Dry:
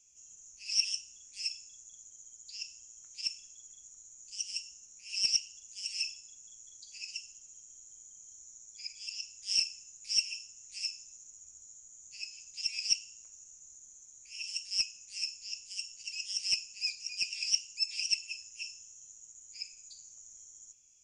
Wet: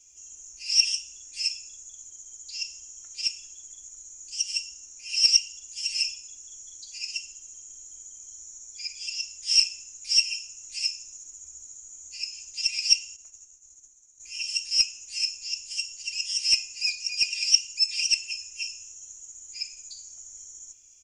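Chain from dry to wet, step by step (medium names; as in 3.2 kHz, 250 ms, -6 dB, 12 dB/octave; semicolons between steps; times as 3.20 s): de-hum 190.4 Hz, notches 21; 13.16–14.20 s: gate -52 dBFS, range -13 dB; comb 2.9 ms, depth 94%; trim +6 dB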